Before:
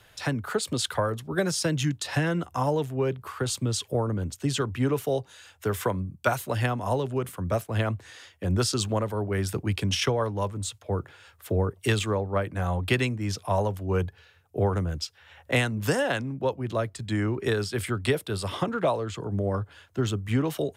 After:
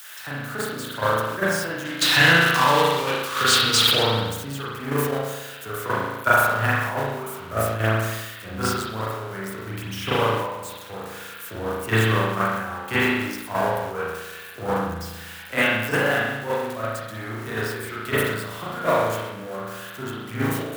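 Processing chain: zero-crossing glitches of -21 dBFS; 1.85–4.03 s: peaking EQ 3.6 kHz +14 dB 2 oct; power-law waveshaper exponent 1.4; high-pass 50 Hz; peaking EQ 1.4 kHz +9.5 dB 1.1 oct; spring tank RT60 1.4 s, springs 36 ms, chirp 30 ms, DRR -8 dB; gate -20 dBFS, range -7 dB; decay stretcher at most 46 dB/s; trim -1 dB

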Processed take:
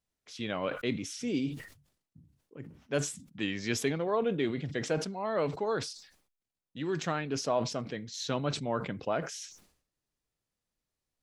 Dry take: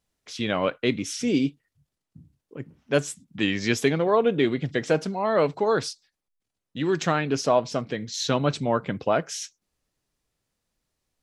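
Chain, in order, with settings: decay stretcher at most 99 dB/s; trim -9 dB

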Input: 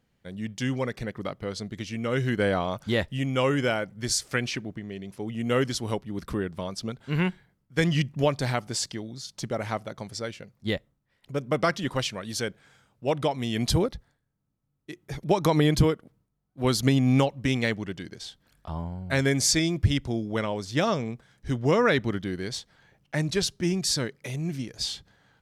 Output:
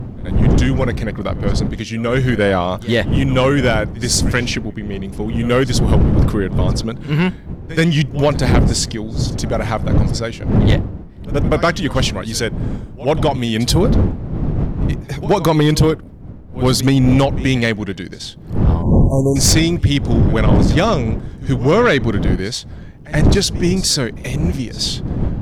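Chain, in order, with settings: wind noise 160 Hz -27 dBFS; pre-echo 78 ms -19 dB; in parallel at -5.5 dB: sine folder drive 9 dB, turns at -5.5 dBFS; on the sum: spectral selection erased 18.82–19.36 s, 1.1–5.8 kHz

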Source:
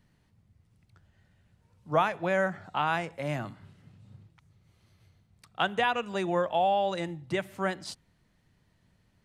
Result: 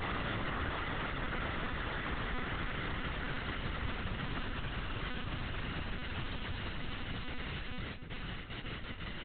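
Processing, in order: Paulstretch 45×, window 0.25 s, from 3.57 s; gate with hold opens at -48 dBFS; tilt shelf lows -6 dB, about 840 Hz; in parallel at 0 dB: gain riding within 3 dB; on the sum: hum notches 50/100/150/200/250 Hz; echo from a far wall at 220 m, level -14 dB; on a send at -8 dB: reverberation RT60 1.3 s, pre-delay 9 ms; on the sum: monotone LPC vocoder at 8 kHz 250 Hz; trim +13 dB

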